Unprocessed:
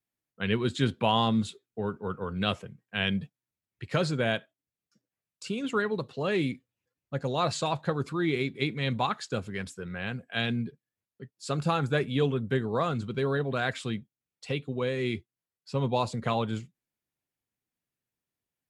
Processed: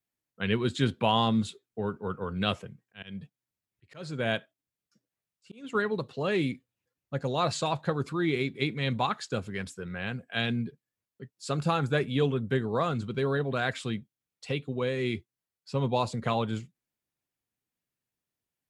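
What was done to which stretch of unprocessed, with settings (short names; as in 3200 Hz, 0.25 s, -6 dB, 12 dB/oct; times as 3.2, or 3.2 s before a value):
2.82–5.75 auto swell 0.397 s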